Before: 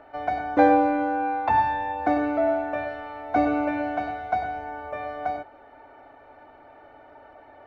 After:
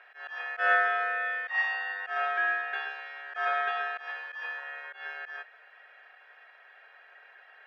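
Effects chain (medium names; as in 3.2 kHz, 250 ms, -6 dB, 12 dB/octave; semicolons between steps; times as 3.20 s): slow attack 136 ms; ring modulator 1 kHz; inverse Chebyshev high-pass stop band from 310 Hz, stop band 40 dB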